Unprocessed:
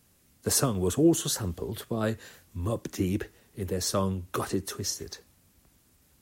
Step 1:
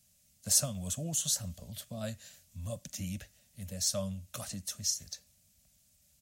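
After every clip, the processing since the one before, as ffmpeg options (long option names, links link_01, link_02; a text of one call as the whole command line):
ffmpeg -i in.wav -af "firequalizer=gain_entry='entry(210,0);entry(380,-29);entry(590,4);entry(880,-11);entry(2500,2);entry(6600,10);entry(11000,5)':delay=0.05:min_phase=1,volume=-8dB" out.wav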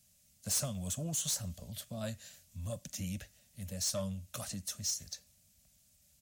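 ffmpeg -i in.wav -af "asoftclip=type=tanh:threshold=-28dB" out.wav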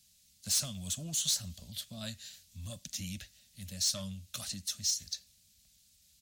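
ffmpeg -i in.wav -af "equalizer=frequency=125:width_type=o:width=1:gain=-4,equalizer=frequency=500:width_type=o:width=1:gain=-9,equalizer=frequency=1000:width_type=o:width=1:gain=-4,equalizer=frequency=4000:width_type=o:width=1:gain=9" out.wav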